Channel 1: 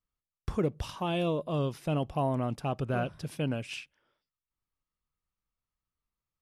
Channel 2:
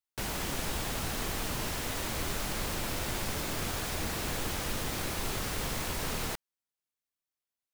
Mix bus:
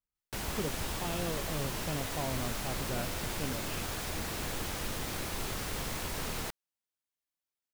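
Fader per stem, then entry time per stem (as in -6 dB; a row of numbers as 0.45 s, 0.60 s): -8.0 dB, -2.5 dB; 0.00 s, 0.15 s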